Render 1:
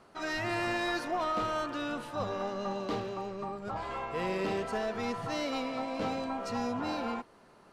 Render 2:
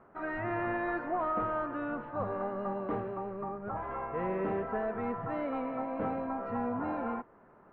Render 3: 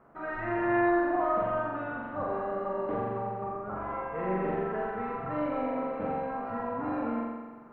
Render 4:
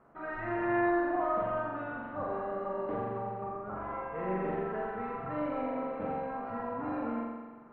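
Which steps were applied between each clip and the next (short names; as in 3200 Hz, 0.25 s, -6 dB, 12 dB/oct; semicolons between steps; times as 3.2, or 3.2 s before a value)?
inverse Chebyshev low-pass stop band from 9200 Hz, stop band 80 dB
flutter echo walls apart 7.4 m, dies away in 1.3 s; gain -1.5 dB
gain -2.5 dB; MP3 40 kbps 48000 Hz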